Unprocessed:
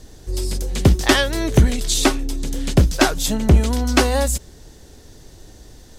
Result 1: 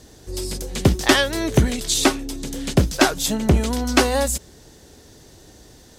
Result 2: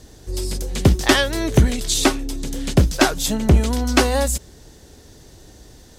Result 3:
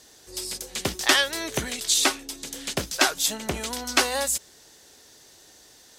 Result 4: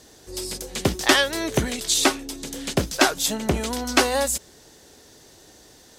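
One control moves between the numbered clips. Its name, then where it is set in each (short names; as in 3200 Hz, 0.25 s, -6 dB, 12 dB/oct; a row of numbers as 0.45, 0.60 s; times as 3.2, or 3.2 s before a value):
HPF, cutoff: 110, 41, 1300, 450 Hz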